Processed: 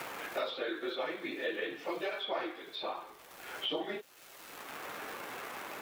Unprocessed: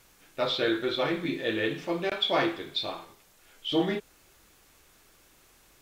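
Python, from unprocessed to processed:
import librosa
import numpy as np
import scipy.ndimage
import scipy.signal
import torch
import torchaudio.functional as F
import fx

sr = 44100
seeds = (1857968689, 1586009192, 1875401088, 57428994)

y = fx.phase_scramble(x, sr, seeds[0], window_ms=50)
y = scipy.signal.sosfilt(scipy.signal.butter(2, 450.0, 'highpass', fs=sr, output='sos'), y)
y = fx.peak_eq(y, sr, hz=7000.0, db=-9.0, octaves=2.0)
y = fx.dmg_crackle(y, sr, seeds[1], per_s=410.0, level_db=-50.0)
y = fx.band_squash(y, sr, depth_pct=100)
y = y * librosa.db_to_amplitude(-4.5)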